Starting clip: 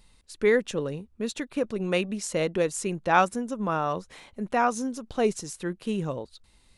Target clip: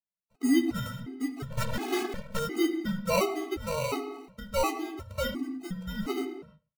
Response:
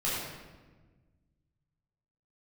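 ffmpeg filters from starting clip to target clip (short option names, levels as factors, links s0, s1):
-filter_complex "[0:a]agate=range=0.0141:threshold=0.00355:ratio=16:detection=peak,tiltshelf=f=970:g=6,asplit=2[s0][s1];[s1]alimiter=limit=0.119:level=0:latency=1,volume=1.12[s2];[s0][s2]amix=inputs=2:normalize=0,highpass=f=350:t=q:w=0.5412,highpass=f=350:t=q:w=1.307,lowpass=f=3000:t=q:w=0.5176,lowpass=f=3000:t=q:w=0.7071,lowpass=f=3000:t=q:w=1.932,afreqshift=-170,acrusher=samples=26:mix=1:aa=0.000001,asplit=2[s3][s4];[s4]adelay=15,volume=0.299[s5];[s3][s5]amix=inputs=2:normalize=0,aecho=1:1:99|198:0.0631|0.0126,asplit=2[s6][s7];[1:a]atrim=start_sample=2205,afade=t=out:st=0.39:d=0.01,atrim=end_sample=17640,highshelf=f=5300:g=-9.5[s8];[s7][s8]afir=irnorm=-1:irlink=0,volume=0.237[s9];[s6][s9]amix=inputs=2:normalize=0,asettb=1/sr,asplit=3[s10][s11][s12];[s10]atrim=end=1.504[s13];[s11]atrim=start=1.5:end=2.39,asetpts=PTS-STARTPTS,afade=t=in:d=0.004:c=qsin,afade=t=out:st=0.886:d=0.004:c=qsin,aeval=exprs='0.299*(cos(1*acos(clip(val(0)/0.299,-1,1)))-cos(1*PI/2))+0.0473*(cos(6*acos(clip(val(0)/0.299,-1,1)))-cos(6*PI/2))+0.0266*(cos(7*acos(clip(val(0)/0.299,-1,1)))-cos(7*PI/2))+0.106*(cos(8*acos(clip(val(0)/0.299,-1,1)))-cos(8*PI/2))':c=same[s14];[s12]atrim=start=2.386[s15];[s13][s14]acrossfade=d=0.004:c1=hsin:c2=qsin[s16];[s16][s15]acrossfade=d=0.004:c1=qsin:c2=hsin,afftfilt=real='re*gt(sin(2*PI*1.4*pts/sr)*(1-2*mod(floor(b*sr/1024/220),2)),0)':imag='im*gt(sin(2*PI*1.4*pts/sr)*(1-2*mod(floor(b*sr/1024/220),2)),0)':win_size=1024:overlap=0.75,volume=0.422"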